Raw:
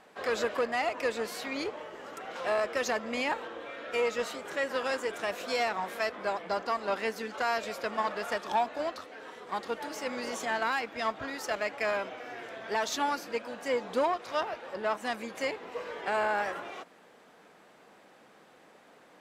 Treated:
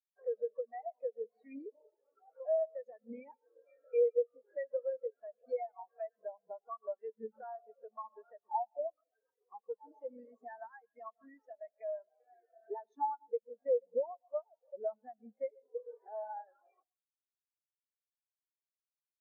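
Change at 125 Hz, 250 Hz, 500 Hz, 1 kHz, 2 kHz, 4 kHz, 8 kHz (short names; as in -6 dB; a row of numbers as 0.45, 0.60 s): under -20 dB, -16.5 dB, -4.5 dB, -11.5 dB, -29.0 dB, under -40 dB, under -35 dB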